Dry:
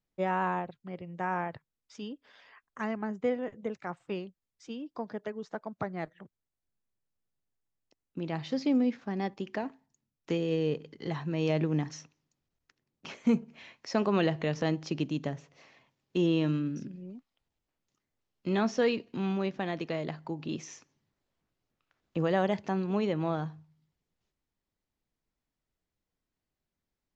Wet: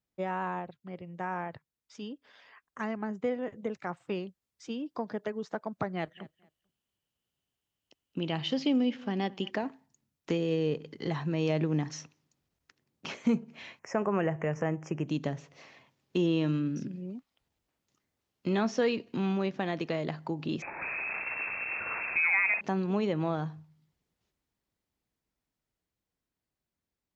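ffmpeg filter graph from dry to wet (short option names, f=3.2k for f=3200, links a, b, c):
-filter_complex "[0:a]asettb=1/sr,asplit=3[a][b][c];[a]atrim=end=5.954[d];[b]atrim=start=5.95:end=9.51,asetpts=PTS-STARTPTS,afade=t=in:d=0.004:c=qsin,afade=t=out:st=3.556:d=0.004:c=qsin,equalizer=f=3k:w=5.2:g=14,aecho=1:1:221|442:0.0668|0.0147,atrim=end_sample=156996[e];[c]atrim=start=9.506[f];[d][e]acrossfade=d=0.004:c1=hsin:c2=qsin[g];[g][f]acrossfade=d=0.004:c1=qsin:c2=hsin,asettb=1/sr,asplit=3[h][i][j];[h]atrim=end=13.794[k];[i]atrim=start=13.79:end=15.08,asetpts=PTS-STARTPTS,afade=t=in:d=0.004:c=qsin,afade=t=out:st=1.286:d=0.004:c=qsin,asuperstop=centerf=4000:order=4:qfactor=0.83,equalizer=f=260:t=o:w=0.58:g=-8.5[l];[j]atrim=start=15.076[m];[k][l]acrossfade=d=0.004:c1=hsin:c2=qsin[n];[n][m]acrossfade=d=0.004:c1=qsin:c2=hsin,asettb=1/sr,asplit=3[o][p][q];[o]atrim=end=20.624[r];[p]atrim=start=20.62:end=22.61,asetpts=PTS-STARTPTS,afade=t=in:d=0.004:c=qsin,afade=t=out:st=1.986:d=0.004:c=qsin,aeval=exprs='val(0)+0.5*0.0266*sgn(val(0))':c=same,lowpass=f=2.3k:t=q:w=0.5098,lowpass=f=2.3k:t=q:w=0.6013,lowpass=f=2.3k:t=q:w=0.9,lowpass=f=2.3k:t=q:w=2.563,afreqshift=-2700[s];[q]atrim=start=22.606[t];[r][s]acrossfade=d=0.004:c1=hsin:c2=qsin[u];[u][t]acrossfade=d=0.004:c1=qsin:c2=hsin,dynaudnorm=f=600:g=11:m=6dB,highpass=41,acompressor=threshold=-31dB:ratio=1.5,volume=-1.5dB"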